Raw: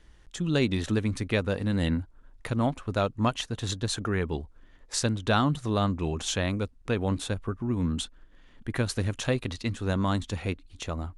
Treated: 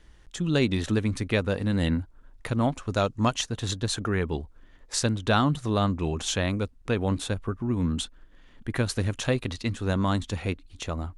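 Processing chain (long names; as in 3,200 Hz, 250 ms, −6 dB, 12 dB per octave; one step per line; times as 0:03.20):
0:02.74–0:03.47: parametric band 6,300 Hz +7.5 dB 0.9 octaves
level +1.5 dB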